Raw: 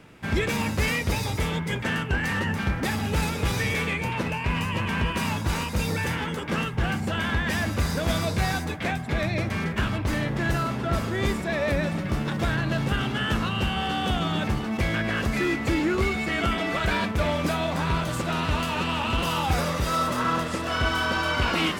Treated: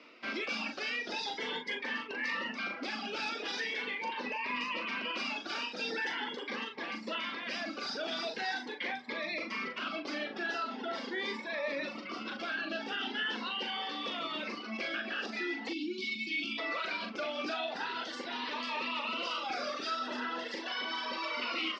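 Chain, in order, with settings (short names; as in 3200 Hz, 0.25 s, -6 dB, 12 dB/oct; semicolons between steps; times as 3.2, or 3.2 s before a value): spectral gain 15.69–16.58, 380–2200 Hz -24 dB; reverb removal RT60 1.9 s; Chebyshev band-pass 240–5200 Hz, order 4; limiter -26 dBFS, peak gain reduction 9.5 dB; low shelf 480 Hz -10 dB; doubler 40 ms -6.5 dB; cascading phaser rising 0.42 Hz; gain +2 dB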